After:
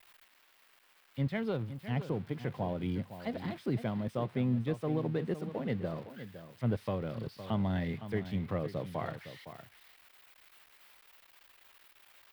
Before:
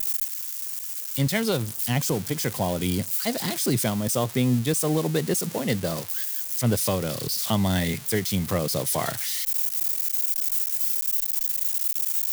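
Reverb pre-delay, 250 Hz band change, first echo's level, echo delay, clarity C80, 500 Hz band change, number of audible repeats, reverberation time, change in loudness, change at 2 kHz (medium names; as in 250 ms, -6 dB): no reverb, -8.5 dB, -12.0 dB, 511 ms, no reverb, -9.0 dB, 1, no reverb, -11.5 dB, -12.5 dB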